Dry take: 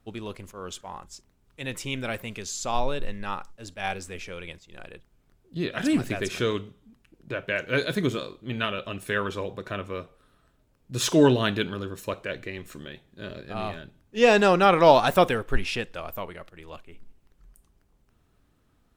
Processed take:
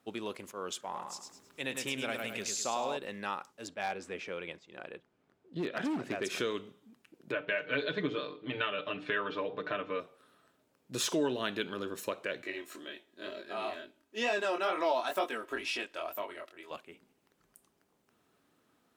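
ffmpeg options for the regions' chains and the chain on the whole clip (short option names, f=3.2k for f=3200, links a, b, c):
-filter_complex "[0:a]asettb=1/sr,asplit=3[a][b][c];[a]atrim=end=0.844[d];[b]atrim=start=0.84:end=2.97,asetpts=PTS-STARTPTS,afade=t=in:d=0.004:c=qsin,afade=t=out:st=2.126:d=0.004:c=qsin,acompressor=mode=upward:threshold=-45dB:ratio=2.5:attack=3.2:release=140:knee=2.83:detection=peak,aecho=1:1:105|210|315|420|525:0.562|0.208|0.077|0.0285|0.0105,atrim=end_sample=93933[e];[c]atrim=start=2.966[f];[d][e]acrossfade=d=0.004:c1=hsin:c2=qsin[g];[g][f]acrossfade=d=0.004:c1=qsin:c2=hsin,asettb=1/sr,asplit=3[h][i][j];[h]atrim=end=3.674[k];[i]atrim=start=3.67:end=6.24,asetpts=PTS-STARTPTS,afade=t=in:d=0.004:c=qsin,afade=t=out:st=2.566:d=0.004:c=qsin,aemphasis=mode=reproduction:type=75fm,asoftclip=type=hard:threshold=-22dB[l];[j]atrim=start=6.236[m];[k][l]acrossfade=d=0.004:c1=hsin:c2=qsin[n];[n][m]acrossfade=d=0.004:c1=qsin:c2=hsin,asettb=1/sr,asplit=3[o][p][q];[o]atrim=end=7.324[r];[p]atrim=start=7.32:end=10,asetpts=PTS-STARTPTS,afade=t=in:d=0.004:c=qsin,afade=t=out:st=2.676:d=0.004:c=qsin,lowpass=f=3.9k:w=0.5412,lowpass=f=3.9k:w=1.3066,bandreject=f=60:t=h:w=6,bandreject=f=120:t=h:w=6,bandreject=f=180:t=h:w=6,bandreject=f=240:t=h:w=6,bandreject=f=300:t=h:w=6,bandreject=f=360:t=h:w=6,bandreject=f=420:t=h:w=6,bandreject=f=480:t=h:w=6,aecho=1:1:6.7:0.9,atrim=end_sample=118188[s];[q]atrim=start=9.996[t];[r][s]acrossfade=d=0.004:c1=hsin:c2=qsin[u];[u][t]acrossfade=d=0.004:c1=qsin:c2=hsin,asettb=1/sr,asplit=3[v][w][x];[v]atrim=end=12.424[y];[w]atrim=start=12.42:end=16.71,asetpts=PTS-STARTPTS,afade=t=in:d=0.004:c=qsin,afade=t=out:st=4.286:d=0.004:c=qsin,equalizer=f=130:w=0.91:g=-10,aecho=1:1:3.1:0.56,atrim=end_sample=189189,flanger=delay=19.5:depth=6:speed=2.1[z];[x]atrim=start=16.706[aa];[y][z]acrossfade=d=0.004:c1=hsin:c2=qsin[ab];[ab][aa]acrossfade=d=0.004:c1=qsin:c2=hsin,highpass=250,acompressor=threshold=-33dB:ratio=2.5"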